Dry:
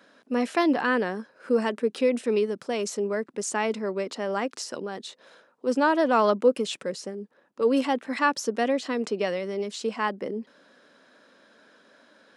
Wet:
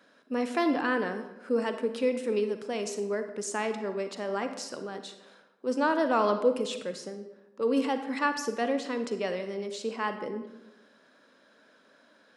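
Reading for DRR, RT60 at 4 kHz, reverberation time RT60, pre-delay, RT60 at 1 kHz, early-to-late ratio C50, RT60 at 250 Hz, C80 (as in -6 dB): 8.0 dB, 0.65 s, 1.0 s, 37 ms, 0.95 s, 8.5 dB, 1.1 s, 11.5 dB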